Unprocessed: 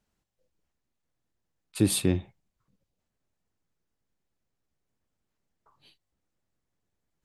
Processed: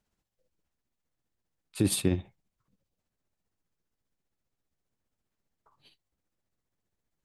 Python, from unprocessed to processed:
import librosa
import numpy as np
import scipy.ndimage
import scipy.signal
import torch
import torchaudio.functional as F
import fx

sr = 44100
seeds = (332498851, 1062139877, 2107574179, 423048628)

y = x * (1.0 - 0.45 / 2.0 + 0.45 / 2.0 * np.cos(2.0 * np.pi * 15.0 * (np.arange(len(x)) / sr)))